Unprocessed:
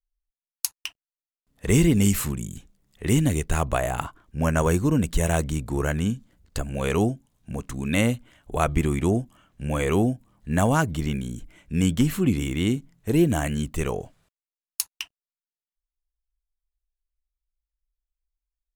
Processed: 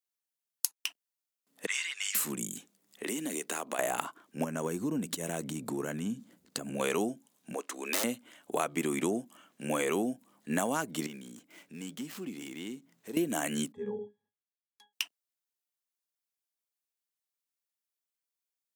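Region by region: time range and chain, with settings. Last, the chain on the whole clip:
1.66–2.15 HPF 1400 Hz 24 dB/oct + air absorption 120 m
3.03–3.79 HPF 200 Hz 24 dB/oct + compressor 5:1, threshold -32 dBFS
4.44–6.8 low shelf 290 Hz +12 dB + compressor 5:1, threshold -24 dBFS
7.54–8.04 HPF 350 Hz 24 dB/oct + high shelf 7100 Hz -7.5 dB + wrapped overs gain 22 dB
11.06–13.17 switching dead time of 0.077 ms + bell 11000 Hz -4 dB 0.81 oct + compressor 2:1, threshold -47 dBFS
13.72–14.93 tone controls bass +8 dB, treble -6 dB + octave resonator G#, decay 0.19 s
whole clip: HPF 220 Hz 24 dB/oct; high shelf 4700 Hz +6.5 dB; compressor, threshold -27 dBFS

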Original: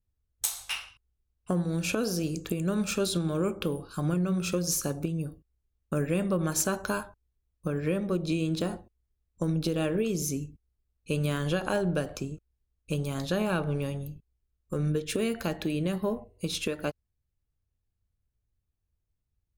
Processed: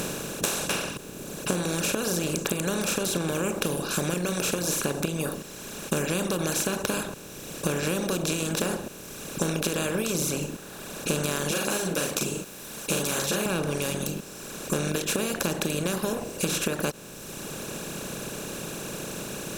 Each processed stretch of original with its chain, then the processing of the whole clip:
11.51–13.46 tilt +4 dB/oct + doubler 42 ms -5 dB + ensemble effect
whole clip: per-bin compression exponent 0.2; reverb removal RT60 1.9 s; compressor 2.5:1, threshold -25 dBFS

